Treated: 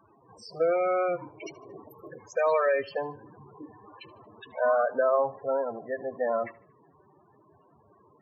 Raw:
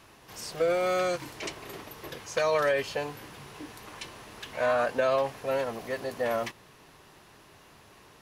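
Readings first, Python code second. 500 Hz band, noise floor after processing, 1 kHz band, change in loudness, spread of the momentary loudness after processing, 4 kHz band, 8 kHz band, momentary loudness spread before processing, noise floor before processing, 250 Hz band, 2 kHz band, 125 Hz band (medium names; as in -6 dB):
+1.5 dB, -62 dBFS, +1.5 dB, +1.5 dB, 19 LU, under -10 dB, under -10 dB, 18 LU, -56 dBFS, -2.0 dB, -2.5 dB, -7.0 dB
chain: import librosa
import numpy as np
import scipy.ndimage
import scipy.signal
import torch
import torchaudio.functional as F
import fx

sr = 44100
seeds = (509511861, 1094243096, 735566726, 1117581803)

p1 = fx.wiener(x, sr, points=9)
p2 = scipy.signal.sosfilt(scipy.signal.butter(2, 69.0, 'highpass', fs=sr, output='sos'), p1)
p3 = fx.bass_treble(p2, sr, bass_db=-2, treble_db=5)
p4 = fx.spec_topn(p3, sr, count=16)
p5 = fx.dynamic_eq(p4, sr, hz=910.0, q=1.2, threshold_db=-42.0, ratio=4.0, max_db=4)
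y = p5 + fx.echo_feedback(p5, sr, ms=76, feedback_pct=38, wet_db=-21, dry=0)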